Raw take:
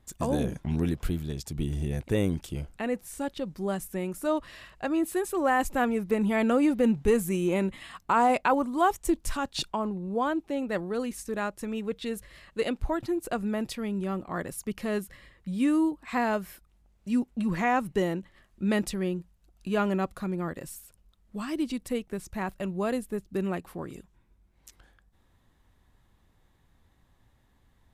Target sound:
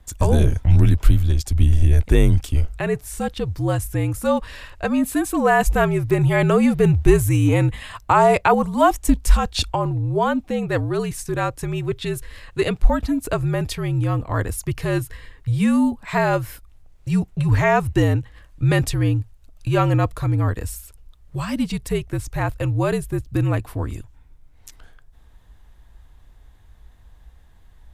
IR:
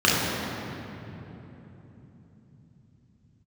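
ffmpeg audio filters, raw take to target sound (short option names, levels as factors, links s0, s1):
-af "afreqshift=-64,lowshelf=f=120:t=q:w=1.5:g=8.5,volume=2.66"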